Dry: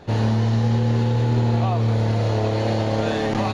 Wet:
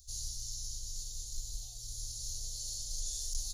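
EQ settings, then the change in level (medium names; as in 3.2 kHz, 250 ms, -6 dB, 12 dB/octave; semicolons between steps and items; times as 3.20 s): inverse Chebyshev band-stop 120–2500 Hz, stop band 50 dB; treble shelf 5.6 kHz +10 dB; +4.5 dB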